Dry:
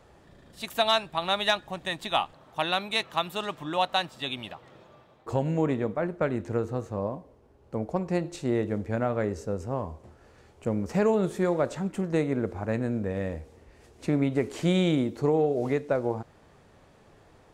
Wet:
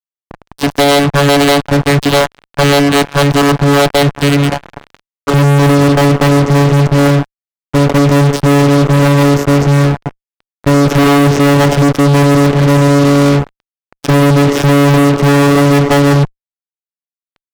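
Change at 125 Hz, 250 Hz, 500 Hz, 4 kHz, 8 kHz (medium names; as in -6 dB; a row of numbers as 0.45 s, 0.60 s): +23.5 dB, +19.5 dB, +16.5 dB, +14.5 dB, +25.0 dB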